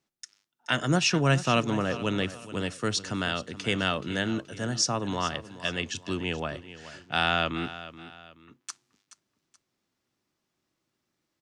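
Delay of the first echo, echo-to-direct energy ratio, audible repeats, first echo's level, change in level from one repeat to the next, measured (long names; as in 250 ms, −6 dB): 427 ms, −14.5 dB, 2, −15.0 dB, −8.5 dB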